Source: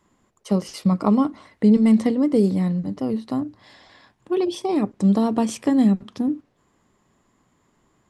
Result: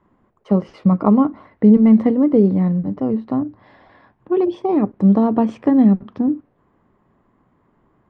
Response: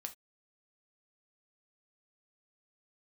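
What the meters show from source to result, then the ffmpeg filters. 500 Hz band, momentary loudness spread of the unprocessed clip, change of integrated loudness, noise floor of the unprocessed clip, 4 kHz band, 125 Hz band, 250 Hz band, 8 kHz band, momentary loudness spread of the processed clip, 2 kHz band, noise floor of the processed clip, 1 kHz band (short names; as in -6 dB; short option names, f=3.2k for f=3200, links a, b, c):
+4.5 dB, 9 LU, +4.5 dB, -66 dBFS, under -10 dB, +4.5 dB, +4.5 dB, under -20 dB, 9 LU, n/a, -62 dBFS, +4.0 dB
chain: -af "lowpass=1.5k,volume=4.5dB"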